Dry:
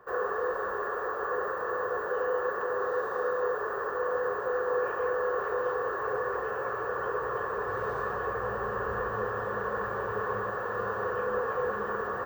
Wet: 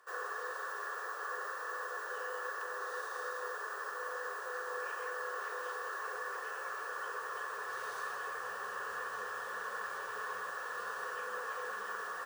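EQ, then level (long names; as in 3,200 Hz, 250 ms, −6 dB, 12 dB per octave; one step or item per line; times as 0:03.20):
resonant band-pass 6,200 Hz, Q 0.57
high-shelf EQ 3,900 Hz +11.5 dB
+2.0 dB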